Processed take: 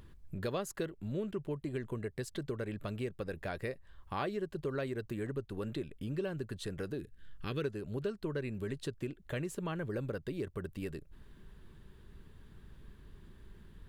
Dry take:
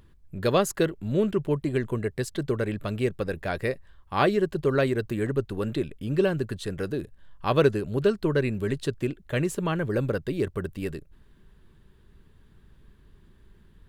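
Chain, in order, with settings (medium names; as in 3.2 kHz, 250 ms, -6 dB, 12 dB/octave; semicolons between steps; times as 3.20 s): 6.99–7.64 s: high-order bell 790 Hz -14.5 dB 1.2 oct; compression 2.5:1, threshold -42 dBFS, peak gain reduction 17.5 dB; trim +1 dB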